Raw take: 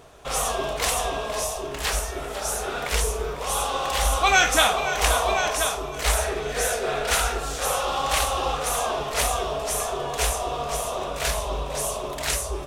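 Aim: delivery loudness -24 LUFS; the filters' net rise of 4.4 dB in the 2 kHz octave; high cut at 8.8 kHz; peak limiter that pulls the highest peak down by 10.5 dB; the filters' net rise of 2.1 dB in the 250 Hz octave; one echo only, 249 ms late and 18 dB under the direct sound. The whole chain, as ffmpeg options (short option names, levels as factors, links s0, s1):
-af "lowpass=8800,equalizer=f=250:t=o:g=3,equalizer=f=2000:t=o:g=6,alimiter=limit=0.251:level=0:latency=1,aecho=1:1:249:0.126,volume=1.06"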